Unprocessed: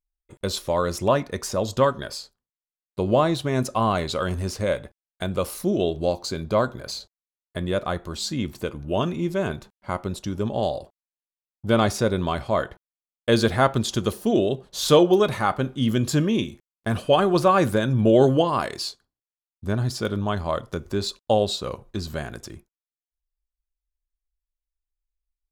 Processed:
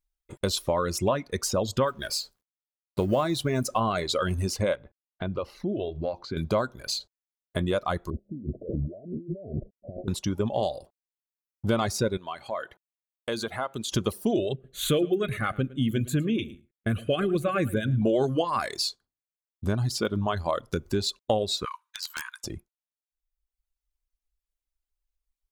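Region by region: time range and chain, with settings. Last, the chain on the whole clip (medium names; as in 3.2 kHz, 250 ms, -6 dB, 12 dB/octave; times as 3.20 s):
1.87–3.80 s: companding laws mixed up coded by mu + treble shelf 11 kHz +4.5 dB
4.75–6.37 s: compression 2:1, threshold -33 dBFS + distance through air 270 m
8.10–10.08 s: compressor with a negative ratio -36 dBFS + steep low-pass 670 Hz 96 dB/octave
12.17–13.92 s: high-pass 340 Hz 6 dB/octave + band-stop 5.2 kHz, Q 6.6 + compression 2:1, threshold -38 dBFS
14.53–18.02 s: static phaser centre 2.2 kHz, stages 4 + delay 109 ms -10.5 dB + tape noise reduction on one side only decoder only
21.65–22.44 s: Chebyshev high-pass 920 Hz, order 8 + integer overflow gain 25.5 dB
whole clip: band-stop 1.8 kHz, Q 24; reverb removal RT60 1.1 s; compression 3:1, threshold -27 dBFS; trim +3.5 dB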